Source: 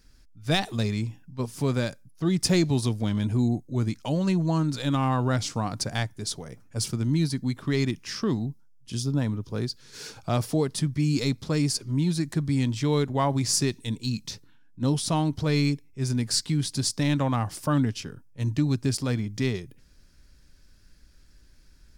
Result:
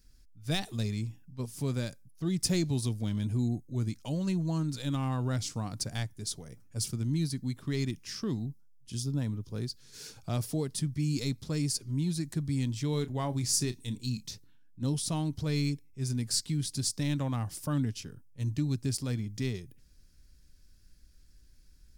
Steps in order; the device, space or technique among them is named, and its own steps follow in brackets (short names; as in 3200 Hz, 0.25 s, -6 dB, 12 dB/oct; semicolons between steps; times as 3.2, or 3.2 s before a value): smiley-face EQ (low shelf 150 Hz +5.5 dB; bell 1000 Hz -4 dB 2 oct; high shelf 6600 Hz +8.5 dB); 12.9–14.29 doubler 32 ms -13 dB; gain -8 dB